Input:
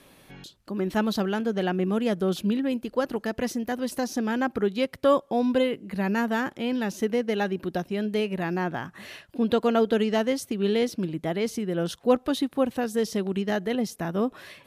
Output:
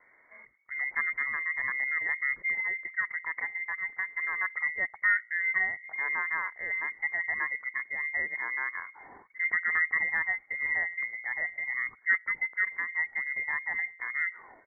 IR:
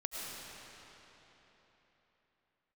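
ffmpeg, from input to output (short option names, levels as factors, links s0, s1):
-af "bandreject=f=79.64:t=h:w=4,bandreject=f=159.28:t=h:w=4,bandreject=f=238.92:t=h:w=4,bandreject=f=318.56:t=h:w=4,bandreject=f=398.2:t=h:w=4,bandreject=f=477.84:t=h:w=4,lowpass=f=2600:t=q:w=0.5098,lowpass=f=2600:t=q:w=0.6013,lowpass=f=2600:t=q:w=0.9,lowpass=f=2600:t=q:w=2.563,afreqshift=-3100,asetrate=32097,aresample=44100,atempo=1.37395,volume=0.531"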